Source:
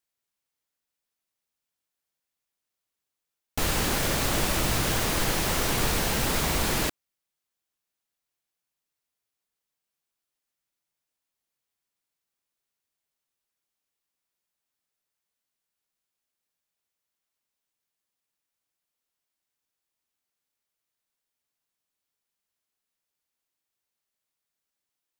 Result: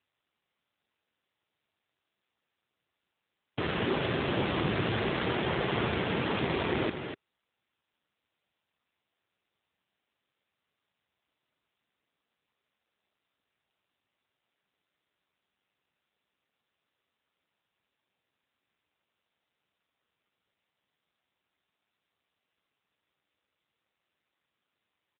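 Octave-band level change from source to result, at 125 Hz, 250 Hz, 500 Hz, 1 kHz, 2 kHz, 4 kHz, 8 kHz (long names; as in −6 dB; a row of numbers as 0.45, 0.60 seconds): −3.0 dB, 0.0 dB, +0.5 dB, −3.5 dB, −3.5 dB, −7.0 dB, below −40 dB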